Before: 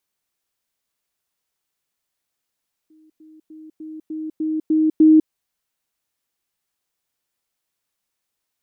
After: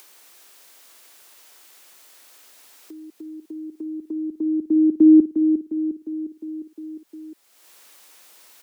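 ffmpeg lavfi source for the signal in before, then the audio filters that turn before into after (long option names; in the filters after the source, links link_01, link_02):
-f lavfi -i "aevalsrc='pow(10,(-49.5+6*floor(t/0.3))/20)*sin(2*PI*313*t)*clip(min(mod(t,0.3),0.2-mod(t,0.3))/0.005,0,1)':duration=2.4:sample_rate=44100"
-filter_complex "[0:a]aecho=1:1:355|710|1065|1420|1775|2130:0.398|0.199|0.0995|0.0498|0.0249|0.0124,acrossover=split=110|190|210[link_01][link_02][link_03][link_04];[link_04]acompressor=mode=upward:threshold=-27dB:ratio=2.5[link_05];[link_01][link_02][link_03][link_05]amix=inputs=4:normalize=0"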